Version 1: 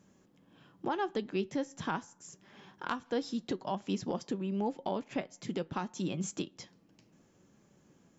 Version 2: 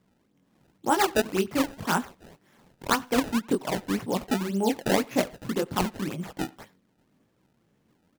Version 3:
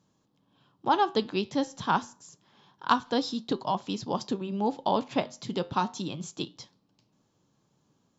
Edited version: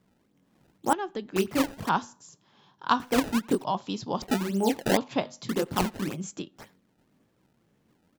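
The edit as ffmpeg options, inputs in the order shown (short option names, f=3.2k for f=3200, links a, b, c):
-filter_complex "[0:a]asplit=2[a][b];[2:a]asplit=3[c][d][e];[1:a]asplit=6[f][g][h][i][j][k];[f]atrim=end=0.932[l];[a]atrim=start=0.928:end=1.362[m];[g]atrim=start=1.358:end=1.892[n];[c]atrim=start=1.888:end=3.002[o];[h]atrim=start=2.998:end=3.642[p];[d]atrim=start=3.638:end=4.222[q];[i]atrim=start=4.218:end=4.972[r];[e]atrim=start=4.968:end=5.492[s];[j]atrim=start=5.488:end=6.22[t];[b]atrim=start=6.12:end=6.63[u];[k]atrim=start=6.53[v];[l][m]acrossfade=d=0.004:c1=hsin:c2=hsin[w];[w][n]acrossfade=d=0.004:c1=hsin:c2=hsin[x];[x][o]acrossfade=d=0.004:c1=hsin:c2=hsin[y];[y][p]acrossfade=d=0.004:c1=hsin:c2=hsin[z];[z][q]acrossfade=d=0.004:c1=hsin:c2=hsin[aa];[aa][r]acrossfade=d=0.004:c1=hsin:c2=hsin[ab];[ab][s]acrossfade=d=0.004:c1=hsin:c2=hsin[ac];[ac][t]acrossfade=d=0.004:c1=hsin:c2=hsin[ad];[ad][u]acrossfade=d=0.1:c1=tri:c2=tri[ae];[ae][v]acrossfade=d=0.1:c1=tri:c2=tri"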